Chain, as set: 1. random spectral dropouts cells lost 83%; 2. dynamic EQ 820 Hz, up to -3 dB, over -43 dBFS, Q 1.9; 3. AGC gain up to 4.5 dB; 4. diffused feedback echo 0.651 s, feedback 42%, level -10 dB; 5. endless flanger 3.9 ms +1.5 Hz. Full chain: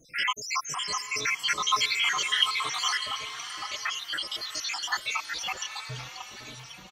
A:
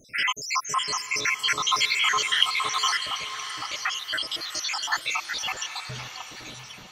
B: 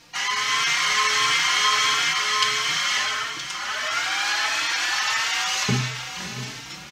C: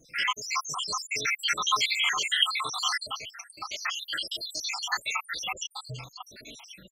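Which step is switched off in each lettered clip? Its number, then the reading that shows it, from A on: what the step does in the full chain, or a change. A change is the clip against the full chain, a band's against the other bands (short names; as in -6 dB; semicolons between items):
5, loudness change +3.0 LU; 1, 250 Hz band +8.0 dB; 4, momentary loudness spread change +3 LU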